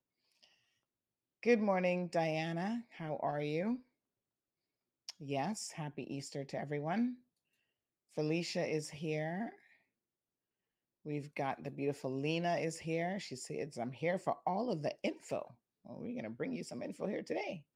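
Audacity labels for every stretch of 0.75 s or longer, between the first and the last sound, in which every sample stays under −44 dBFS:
3.760000	5.090000	silence
7.140000	8.170000	silence
9.500000	11.060000	silence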